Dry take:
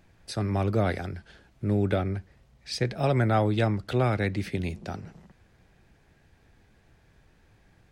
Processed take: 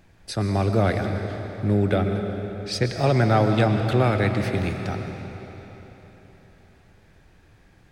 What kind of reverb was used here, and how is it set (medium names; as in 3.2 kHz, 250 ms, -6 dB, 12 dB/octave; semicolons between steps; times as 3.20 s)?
algorithmic reverb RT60 3.9 s, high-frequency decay 0.9×, pre-delay 80 ms, DRR 5 dB; trim +4 dB